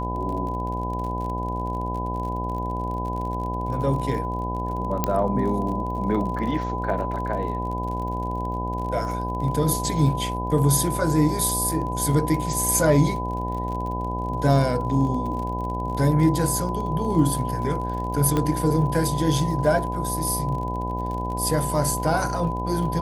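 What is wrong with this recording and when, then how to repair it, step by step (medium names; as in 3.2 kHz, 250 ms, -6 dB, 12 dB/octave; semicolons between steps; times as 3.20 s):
buzz 60 Hz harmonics 17 -29 dBFS
crackle 41 per s -32 dBFS
whine 1 kHz -29 dBFS
5.04 s: pop -7 dBFS
18.37 s: pop -11 dBFS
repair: de-click; band-stop 1 kHz, Q 30; de-hum 60 Hz, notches 17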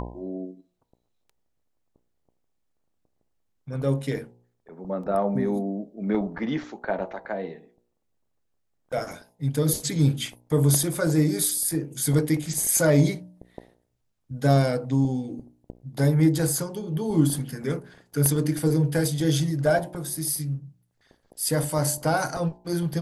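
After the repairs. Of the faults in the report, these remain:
5.04 s: pop
18.37 s: pop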